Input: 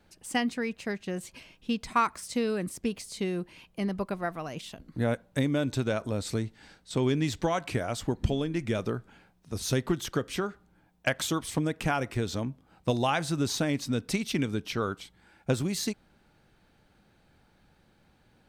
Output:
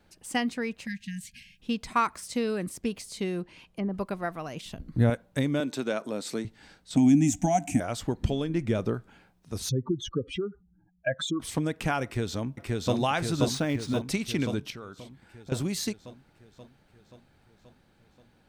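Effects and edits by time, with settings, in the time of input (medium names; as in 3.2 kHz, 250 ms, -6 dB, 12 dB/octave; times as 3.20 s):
0.86–1.60 s: spectral selection erased 250–1600 Hz
3.41–3.94 s: low-pass that closes with the level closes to 950 Hz, closed at -28.5 dBFS
4.65–5.10 s: bass shelf 200 Hz +12 dB
5.60–6.45 s: high-pass 190 Hz 24 dB/octave
6.96–7.80 s: FFT filter 130 Hz 0 dB, 190 Hz +9 dB, 290 Hz +12 dB, 440 Hz -27 dB, 730 Hz +11 dB, 1.1 kHz -17 dB, 2.4 kHz -1 dB, 4.3 kHz -15 dB, 6.5 kHz +13 dB, 11 kHz +5 dB
8.49–8.94 s: tilt shelf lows +3.5 dB
9.69–11.40 s: spectral contrast enhancement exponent 2.9
12.04–12.95 s: echo throw 530 ms, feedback 65%, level -0.5 dB
13.54–14.02 s: decimation joined by straight lines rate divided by 3×
14.70–15.52 s: compression 3:1, threshold -42 dBFS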